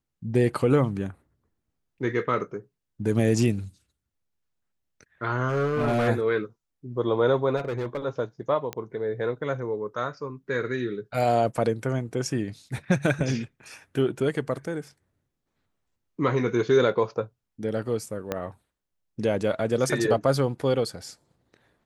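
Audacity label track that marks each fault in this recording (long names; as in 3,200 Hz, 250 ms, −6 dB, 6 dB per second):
5.480000	6.090000	clipping −20 dBFS
7.560000	7.980000	clipping −25 dBFS
8.730000	8.730000	click −16 dBFS
18.320000	18.320000	click −14 dBFS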